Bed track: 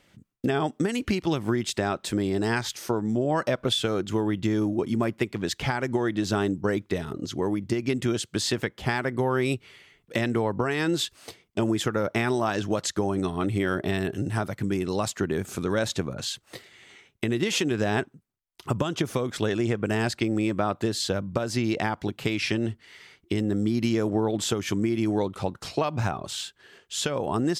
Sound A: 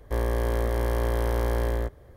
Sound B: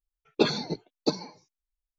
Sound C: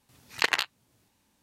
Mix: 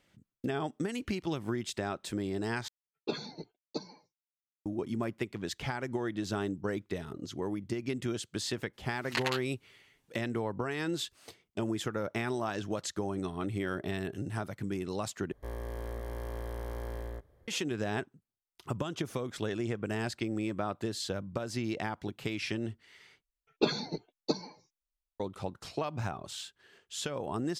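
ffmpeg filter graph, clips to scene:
-filter_complex "[2:a]asplit=2[a][b];[0:a]volume=-8.5dB[c];[a]agate=range=-33dB:threshold=-54dB:ratio=3:release=100:detection=peak[d];[3:a]aecho=1:1:7.4:0.92[e];[c]asplit=4[f][g][h][i];[f]atrim=end=2.684[j];[d]atrim=end=1.98,asetpts=PTS-STARTPTS,volume=-12dB[k];[g]atrim=start=4.656:end=15.324[l];[1:a]atrim=end=2.16,asetpts=PTS-STARTPTS,volume=-13.5dB[m];[h]atrim=start=17.476:end=23.224[n];[b]atrim=end=1.98,asetpts=PTS-STARTPTS,volume=-5dB[o];[i]atrim=start=25.196[p];[e]atrim=end=1.42,asetpts=PTS-STARTPTS,volume=-10.5dB,afade=t=in:d=0.004:c=hsin,afade=t=out:st=1.416:d=0.004:c=hsin,adelay=8730[q];[j][k]acrossfade=d=0.004:c1=hsin:c2=hsin[r];[r][l]acrossfade=d=0.004:c1=hsin:c2=hsin[s];[s][m]acrossfade=d=0.004:c1=hsin:c2=hsin[t];[t][n]acrossfade=d=0.004:c1=hsin:c2=hsin[u];[u][o]acrossfade=d=0.004:c1=hsin:c2=hsin[v];[v][p]acrossfade=d=0.004:c1=hsin:c2=hsin[w];[w][q]amix=inputs=2:normalize=0"

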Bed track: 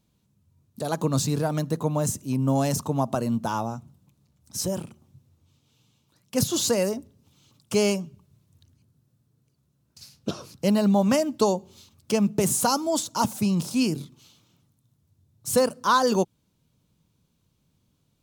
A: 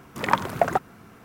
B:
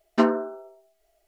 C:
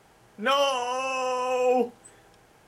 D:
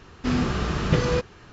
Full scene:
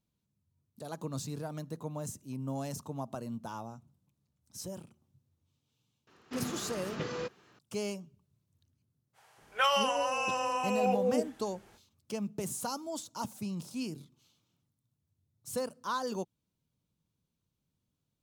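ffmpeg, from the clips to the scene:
-filter_complex "[0:a]volume=-14dB[a];[4:a]highpass=200[b];[3:a]acrossover=split=540[c][d];[c]adelay=250[e];[e][d]amix=inputs=2:normalize=0[f];[b]atrim=end=1.52,asetpts=PTS-STARTPTS,volume=-12.5dB,afade=t=in:d=0.004:c=hsin,afade=t=out:st=1.516:d=0.004:c=hsin,adelay=6070[g];[f]atrim=end=2.67,asetpts=PTS-STARTPTS,volume=-2.5dB,afade=t=in:d=0.05,afade=t=out:st=2.62:d=0.05,adelay=9130[h];[a][g][h]amix=inputs=3:normalize=0"

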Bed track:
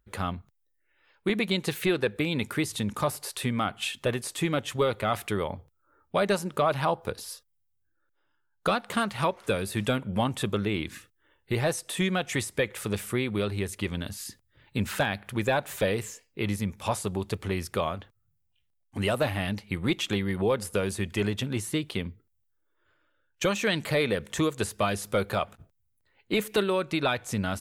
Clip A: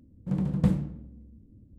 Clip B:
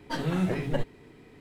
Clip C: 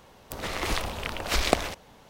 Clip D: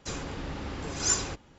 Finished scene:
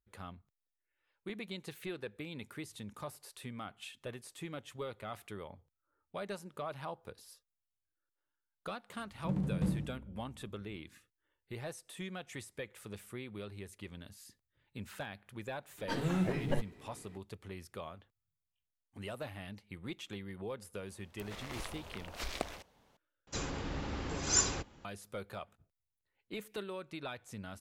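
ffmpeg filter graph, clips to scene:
-filter_complex "[0:a]volume=-16.5dB[a];[1:a]alimiter=limit=-17.5dB:level=0:latency=1:release=24[b];[a]asplit=2[c][d];[c]atrim=end=23.274[e];[4:a]atrim=end=1.58,asetpts=PTS-STARTPTS,volume=-2.5dB[f];[d]atrim=start=24.846[g];[b]atrim=end=1.78,asetpts=PTS-STARTPTS,volume=-6dB,afade=t=in:d=0.004:c=hsin,afade=t=out:st=1.776:d=0.004:c=hsin,adelay=396018S[h];[2:a]atrim=end=1.4,asetpts=PTS-STARTPTS,volume=-5dB,afade=t=in:d=0.004:c=hsin,afade=t=out:st=1.396:d=0.004:c=hsin,adelay=15780[i];[3:a]atrim=end=2.09,asetpts=PTS-STARTPTS,volume=-15dB,afade=t=in:d=0.004:c=hsin,afade=t=out:st=2.086:d=0.004:c=hsin,adelay=20880[j];[e][f]acrossfade=d=0.004:c1=hsin:c2=hsin[k];[k][g]acrossfade=d=0.004:c1=hsin:c2=hsin[l];[l][h][i][j]amix=inputs=4:normalize=0"

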